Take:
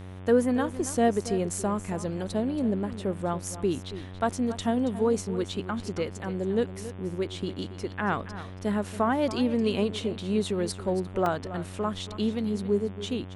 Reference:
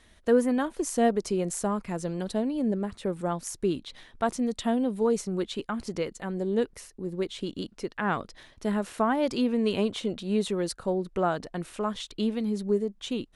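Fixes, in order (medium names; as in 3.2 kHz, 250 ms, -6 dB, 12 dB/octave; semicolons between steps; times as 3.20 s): de-hum 92.9 Hz, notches 39; interpolate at 5.52/11.26 s, 2 ms; inverse comb 278 ms -14 dB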